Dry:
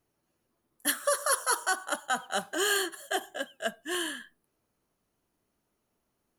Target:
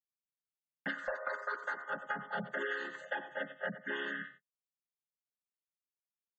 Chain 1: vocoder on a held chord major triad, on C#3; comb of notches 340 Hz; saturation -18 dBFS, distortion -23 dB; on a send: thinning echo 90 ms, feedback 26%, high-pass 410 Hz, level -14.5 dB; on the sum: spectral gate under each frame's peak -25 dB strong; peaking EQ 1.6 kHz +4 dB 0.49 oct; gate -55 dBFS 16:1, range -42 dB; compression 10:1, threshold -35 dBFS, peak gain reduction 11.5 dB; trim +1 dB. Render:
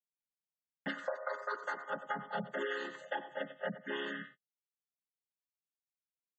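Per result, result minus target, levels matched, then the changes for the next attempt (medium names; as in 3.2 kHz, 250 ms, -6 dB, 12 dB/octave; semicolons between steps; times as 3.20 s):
saturation: distortion -9 dB; 2 kHz band -2.5 dB
change: saturation -25 dBFS, distortion -14 dB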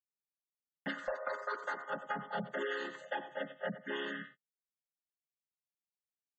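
2 kHz band -3.0 dB
change: peaking EQ 1.6 kHz +12 dB 0.49 oct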